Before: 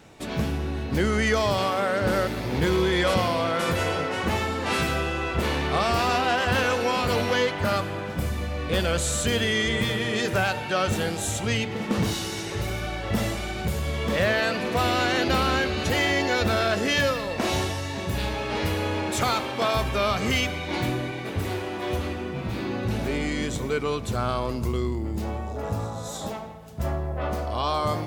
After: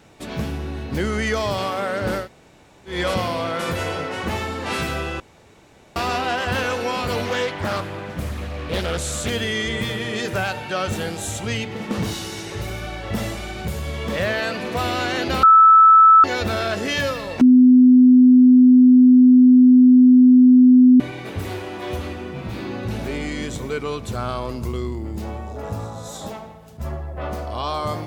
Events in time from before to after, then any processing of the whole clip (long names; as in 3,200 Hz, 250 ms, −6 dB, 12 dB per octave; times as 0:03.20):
0:02.22–0:02.93: fill with room tone, crossfade 0.16 s
0:05.20–0:05.96: fill with room tone
0:07.25–0:09.30: highs frequency-modulated by the lows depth 0.55 ms
0:15.43–0:16.24: beep over 1,310 Hz −6.5 dBFS
0:17.41–0:21.00: beep over 252 Hz −7 dBFS
0:26.77–0:27.17: string-ensemble chorus